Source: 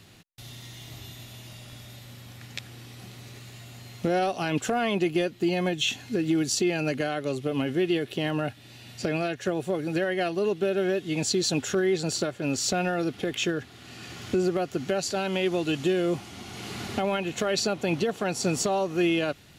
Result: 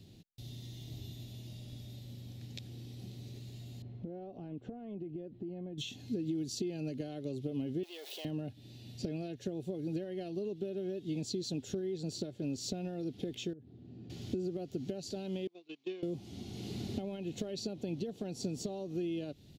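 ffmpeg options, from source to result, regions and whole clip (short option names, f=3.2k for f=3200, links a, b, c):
-filter_complex "[0:a]asettb=1/sr,asplit=3[a][b][c];[a]atrim=end=3.824[d];[b]atrim=start=3.82:end=5.78,asetpts=PTS-STARTPTS,afade=t=in:d=0.004:c=qsin,afade=t=out:st=1.956:d=0.004:c=qsin,lowpass=1.4k,acompressor=threshold=-37dB:ratio=6:attack=3.2:release=140:knee=1:detection=peak[e];[c]atrim=start=5.776[f];[d][e]acrossfade=d=0.004:c1=hsin:c2=qsin[g];[g][f]acrossfade=d=0.004:c1=qsin:c2=hsin,asettb=1/sr,asplit=3[h][i][j];[h]atrim=end=7.834[k];[i]atrim=start=7.83:end=8.25,asetpts=PTS-STARTPTS,afade=t=in:d=0.004:c=qsin,afade=t=out:st=0.416:d=0.004:c=qsin,aeval=exprs='val(0)+0.5*0.0299*sgn(val(0))':c=same,highpass=f=650:w=0.5412,highpass=f=650:w=1.3066[l];[j]atrim=start=8.246[m];[k][l]acrossfade=d=0.004:c1=hsin:c2=qsin[n];[n][m]acrossfade=d=0.004:c1=qsin:c2=hsin,asettb=1/sr,asplit=3[o][p][q];[o]atrim=end=13.534[r];[p]atrim=start=13.53:end=14.1,asetpts=PTS-STARTPTS,afade=t=in:d=0.004:c=qsin,afade=t=out:st=0.566:d=0.004:c=qsin,bandpass=f=190:t=q:w=0.54,acompressor=threshold=-43dB:ratio=4:attack=3.2:release=140:knee=1:detection=peak[s];[q]atrim=start=14.096[t];[r][s]acrossfade=d=0.004:c1=hsin:c2=qsin[u];[u][t]acrossfade=d=0.004:c1=qsin:c2=hsin,asettb=1/sr,asplit=3[v][w][x];[v]atrim=end=15.474[y];[w]atrim=start=15.47:end=16.03,asetpts=PTS-STARTPTS,afade=t=in:d=0.004:c=qsin,afade=t=out:st=0.556:d=0.004:c=qsin,agate=range=-27dB:threshold=-24dB:ratio=16:release=100:detection=peak,highpass=480,equalizer=f=560:t=q:w=4:g=-8,equalizer=f=1.1k:t=q:w=4:g=9,equalizer=f=2.3k:t=q:w=4:g=9,lowpass=f=6k:w=0.5412,lowpass=f=6k:w=1.3066[z];[x]atrim=start=16.026[aa];[y][z]acrossfade=d=0.004:c1=hsin:c2=qsin[ab];[ab][aa]acrossfade=d=0.004:c1=qsin:c2=hsin,equalizer=f=9.4k:w=0.69:g=-9,acompressor=threshold=-31dB:ratio=6,firequalizer=gain_entry='entry(280,0);entry(1200,-23);entry(3700,-4)':delay=0.05:min_phase=1,volume=-1dB"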